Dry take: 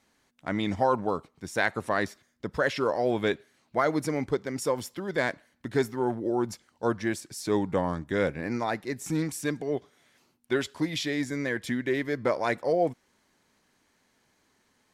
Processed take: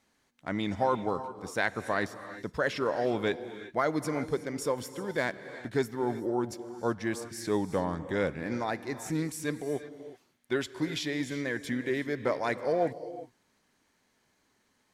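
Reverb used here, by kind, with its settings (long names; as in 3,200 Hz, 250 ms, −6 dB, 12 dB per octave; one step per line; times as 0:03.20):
reverb whose tail is shaped and stops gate 400 ms rising, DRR 11.5 dB
level −3 dB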